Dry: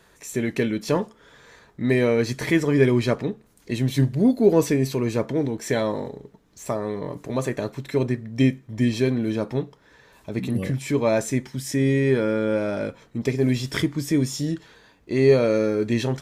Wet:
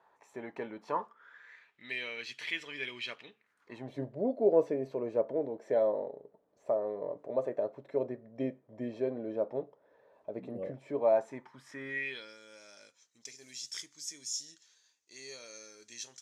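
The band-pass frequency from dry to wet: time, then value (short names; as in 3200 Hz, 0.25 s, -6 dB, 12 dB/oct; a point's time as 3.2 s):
band-pass, Q 3.6
0.83 s 860 Hz
1.85 s 2900 Hz
3.31 s 2900 Hz
3.94 s 590 Hz
10.89 s 590 Hz
11.87 s 1400 Hz
12.38 s 6300 Hz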